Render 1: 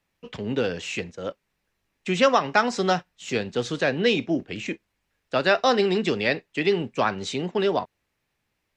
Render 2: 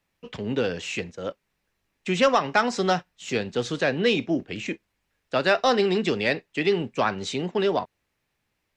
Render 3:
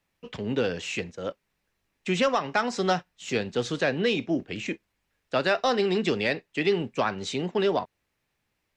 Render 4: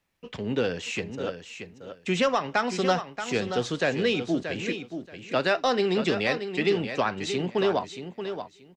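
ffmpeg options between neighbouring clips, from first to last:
-af "acontrast=51,volume=-6dB"
-af "alimiter=limit=-13dB:level=0:latency=1:release=375,volume=-1dB"
-af "aecho=1:1:629|1258|1887:0.355|0.0639|0.0115"

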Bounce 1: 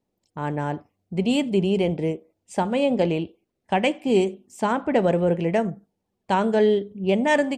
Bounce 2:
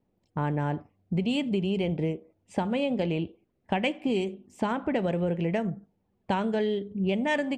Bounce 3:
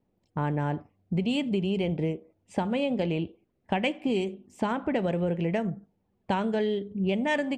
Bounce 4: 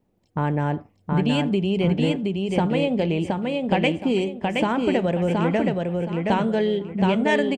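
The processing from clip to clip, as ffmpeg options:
-filter_complex "[0:a]bass=f=250:g=5,treble=f=4k:g=-14,acrossover=split=2500[a][b];[a]acompressor=threshold=-27dB:ratio=6[c];[c][b]amix=inputs=2:normalize=0,volume=2dB"
-af anull
-af "aecho=1:1:721|1442|2163|2884:0.708|0.191|0.0516|0.0139,volume=5dB"

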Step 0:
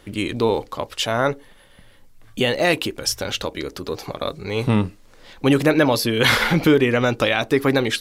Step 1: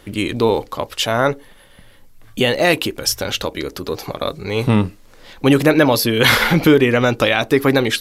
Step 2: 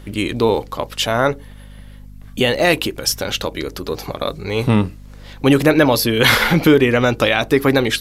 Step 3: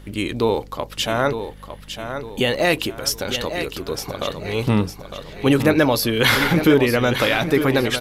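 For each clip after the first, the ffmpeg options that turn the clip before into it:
-af "equalizer=f=12k:w=4.9:g=7,volume=3.5dB"
-af "aeval=exprs='val(0)+0.0141*(sin(2*PI*50*n/s)+sin(2*PI*2*50*n/s)/2+sin(2*PI*3*50*n/s)/3+sin(2*PI*4*50*n/s)/4+sin(2*PI*5*50*n/s)/5)':c=same"
-af "aecho=1:1:906|1812|2718|3624:0.355|0.142|0.0568|0.0227,volume=-3.5dB"

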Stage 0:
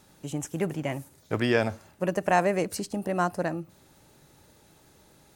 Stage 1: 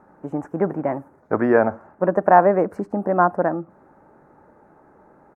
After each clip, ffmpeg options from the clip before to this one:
-af "firequalizer=gain_entry='entry(130,0);entry(200,9);entry(850,14);entry(1500,10);entry(3200,-26);entry(5600,-22)':delay=0.05:min_phase=1,volume=-2.5dB"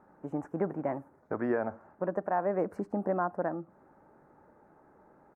-af "alimiter=limit=-11.5dB:level=0:latency=1:release=352,volume=-8dB"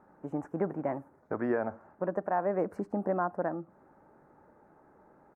-af anull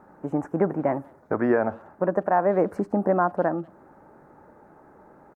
-filter_complex "[0:a]asplit=2[a][b];[b]adelay=190,highpass=300,lowpass=3.4k,asoftclip=type=hard:threshold=-28.5dB,volume=-29dB[c];[a][c]amix=inputs=2:normalize=0,volume=8.5dB"

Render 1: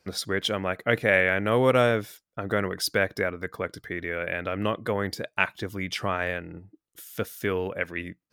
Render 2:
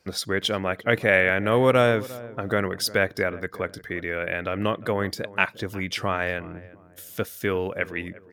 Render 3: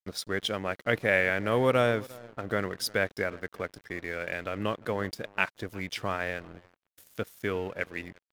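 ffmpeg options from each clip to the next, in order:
-filter_complex "[0:a]asplit=2[a][b];[b]adelay=353,lowpass=f=1.1k:p=1,volume=-17.5dB,asplit=2[c][d];[d]adelay=353,lowpass=f=1.1k:p=1,volume=0.37,asplit=2[e][f];[f]adelay=353,lowpass=f=1.1k:p=1,volume=0.37[g];[a][c][e][g]amix=inputs=4:normalize=0,volume=2dB"
-af "aeval=exprs='sgn(val(0))*max(abs(val(0))-0.00841,0)':c=same,volume=-5dB"

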